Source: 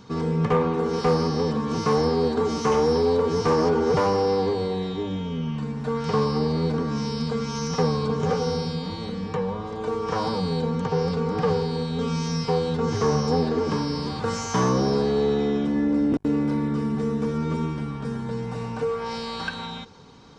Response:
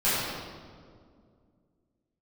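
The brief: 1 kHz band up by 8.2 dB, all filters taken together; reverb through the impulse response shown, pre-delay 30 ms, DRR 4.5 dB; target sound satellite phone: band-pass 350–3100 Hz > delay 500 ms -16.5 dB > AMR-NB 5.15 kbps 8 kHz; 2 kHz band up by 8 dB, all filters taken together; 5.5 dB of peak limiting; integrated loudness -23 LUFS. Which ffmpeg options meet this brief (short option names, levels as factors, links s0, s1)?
-filter_complex "[0:a]equalizer=f=1000:t=o:g=8,equalizer=f=2000:t=o:g=8,alimiter=limit=0.251:level=0:latency=1,asplit=2[s0][s1];[1:a]atrim=start_sample=2205,adelay=30[s2];[s1][s2]afir=irnorm=-1:irlink=0,volume=0.106[s3];[s0][s3]amix=inputs=2:normalize=0,highpass=350,lowpass=3100,aecho=1:1:500:0.15,volume=1.33" -ar 8000 -c:a libopencore_amrnb -b:a 5150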